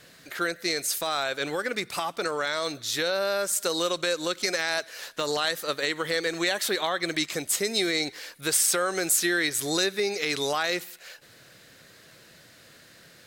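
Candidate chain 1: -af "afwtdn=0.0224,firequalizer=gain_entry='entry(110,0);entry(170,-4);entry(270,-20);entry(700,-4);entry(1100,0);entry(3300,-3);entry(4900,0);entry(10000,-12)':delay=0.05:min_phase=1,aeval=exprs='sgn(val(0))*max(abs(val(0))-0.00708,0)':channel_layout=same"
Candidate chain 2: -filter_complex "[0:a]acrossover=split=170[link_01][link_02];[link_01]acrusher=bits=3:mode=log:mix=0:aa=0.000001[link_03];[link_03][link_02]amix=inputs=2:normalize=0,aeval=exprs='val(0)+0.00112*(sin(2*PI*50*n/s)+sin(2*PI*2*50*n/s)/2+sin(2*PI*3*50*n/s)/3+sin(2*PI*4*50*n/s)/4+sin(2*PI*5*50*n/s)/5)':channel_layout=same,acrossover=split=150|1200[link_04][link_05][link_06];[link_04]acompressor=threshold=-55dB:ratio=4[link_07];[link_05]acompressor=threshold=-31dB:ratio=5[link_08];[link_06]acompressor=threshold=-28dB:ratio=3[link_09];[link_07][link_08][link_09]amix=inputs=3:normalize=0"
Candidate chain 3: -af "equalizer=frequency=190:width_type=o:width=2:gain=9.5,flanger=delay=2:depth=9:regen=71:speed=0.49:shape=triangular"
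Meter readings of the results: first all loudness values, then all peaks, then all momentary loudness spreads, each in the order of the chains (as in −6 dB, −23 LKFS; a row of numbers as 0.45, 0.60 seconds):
−32.5, −29.5, −29.0 LKFS; −15.0, −15.0, −11.5 dBFS; 7, 5, 7 LU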